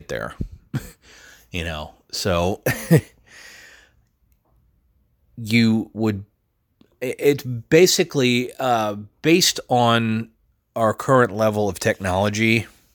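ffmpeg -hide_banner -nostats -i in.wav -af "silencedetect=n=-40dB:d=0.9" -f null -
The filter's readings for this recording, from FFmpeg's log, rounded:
silence_start: 3.79
silence_end: 5.38 | silence_duration: 1.58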